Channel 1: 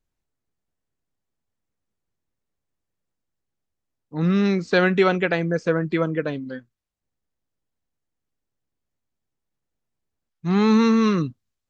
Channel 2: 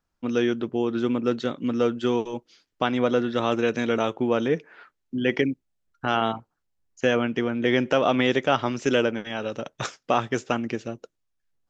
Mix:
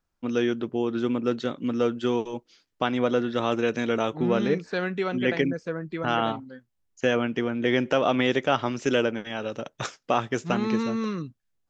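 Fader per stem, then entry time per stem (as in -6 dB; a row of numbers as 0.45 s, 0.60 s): -10.0 dB, -1.5 dB; 0.00 s, 0.00 s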